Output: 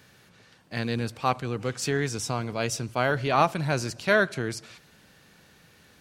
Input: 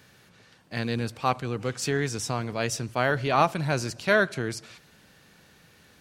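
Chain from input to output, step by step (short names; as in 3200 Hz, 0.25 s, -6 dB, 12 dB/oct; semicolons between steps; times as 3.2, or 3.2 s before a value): 2.13–3.14 notch 1800 Hz, Q 11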